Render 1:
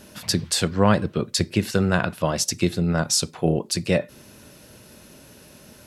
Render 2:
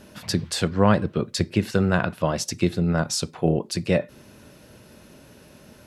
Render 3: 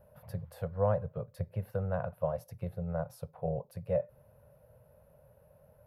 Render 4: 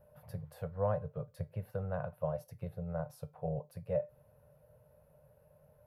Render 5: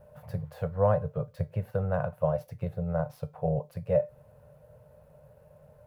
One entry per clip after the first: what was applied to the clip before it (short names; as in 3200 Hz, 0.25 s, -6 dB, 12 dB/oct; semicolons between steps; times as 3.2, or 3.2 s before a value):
high shelf 4000 Hz -8 dB
EQ curve 140 Hz 0 dB, 320 Hz -29 dB, 520 Hz +4 dB, 3500 Hz -25 dB, 7600 Hz -29 dB, 13000 Hz +1 dB; gain -8.5 dB
resonator 150 Hz, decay 0.19 s, harmonics all, mix 60%; gain +2 dB
median filter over 5 samples; gain +8.5 dB